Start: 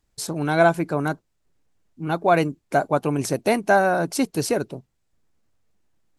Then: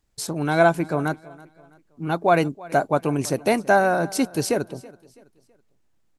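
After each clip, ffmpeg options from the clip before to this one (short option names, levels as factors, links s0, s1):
-af "aecho=1:1:328|656|984:0.0841|0.032|0.0121"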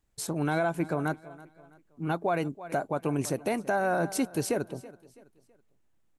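-af "equalizer=f=4900:t=o:w=0.69:g=-5,alimiter=limit=0.188:level=0:latency=1:release=166,volume=0.668"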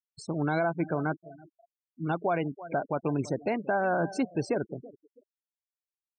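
-filter_complex "[0:a]acrossover=split=6200[s0][s1];[s1]acompressor=threshold=0.00501:ratio=4:attack=1:release=60[s2];[s0][s2]amix=inputs=2:normalize=0,afftfilt=real='re*gte(hypot(re,im),0.0178)':imag='im*gte(hypot(re,im),0.0178)':win_size=1024:overlap=0.75"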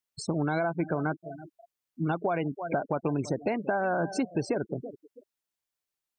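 -af "acompressor=threshold=0.0224:ratio=4,volume=2.24"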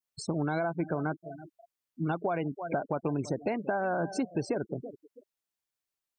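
-af "adynamicequalizer=threshold=0.00447:dfrequency=2500:dqfactor=1.1:tfrequency=2500:tqfactor=1.1:attack=5:release=100:ratio=0.375:range=2:mode=cutabove:tftype=bell,volume=0.794"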